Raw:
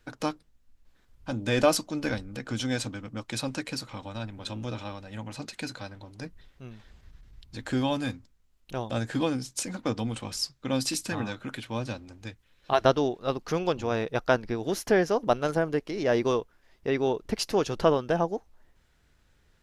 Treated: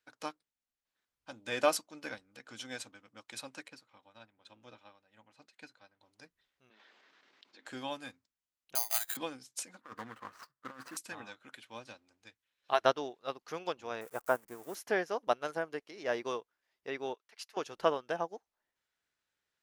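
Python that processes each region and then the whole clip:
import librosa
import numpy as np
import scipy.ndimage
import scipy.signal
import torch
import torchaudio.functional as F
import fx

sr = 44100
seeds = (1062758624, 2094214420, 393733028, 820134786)

y = fx.chain(x, sr, fx.high_shelf(hz=4800.0, db=-10.5),
    fx.upward_expand(threshold_db=-44.0, expansion=1.5), at=(3.68, 6.01))
y = fx.chain(y, sr, fx.highpass(hz=270.0, slope=24),
    fx.air_absorb(metres=160.0),
    fx.env_flatten(amount_pct=70), at=(6.7, 7.66))
y = fx.chain(y, sr, fx.brickwall_bandpass(low_hz=600.0, high_hz=6300.0),
    fx.resample_bad(factor=8, down='none', up='zero_stuff'), at=(8.75, 9.17))
y = fx.chain(y, sr, fx.median_filter(points=25),
    fx.band_shelf(hz=1400.0, db=13.0, octaves=1.1),
    fx.over_compress(threshold_db=-29.0, ratio=-0.5), at=(9.81, 10.97))
y = fx.chain(y, sr, fx.crossing_spikes(level_db=-23.0),
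    fx.curve_eq(hz=(1200.0, 4000.0, 7600.0), db=(0, -19, -9)), at=(14.01, 14.75))
y = fx.chain(y, sr, fx.highpass(hz=1400.0, slope=12),
    fx.tilt_eq(slope=-2.0), at=(17.14, 17.57))
y = fx.highpass(y, sr, hz=940.0, slope=6)
y = fx.dynamic_eq(y, sr, hz=4800.0, q=0.88, threshold_db=-45.0, ratio=4.0, max_db=-4)
y = fx.upward_expand(y, sr, threshold_db=-51.0, expansion=1.5)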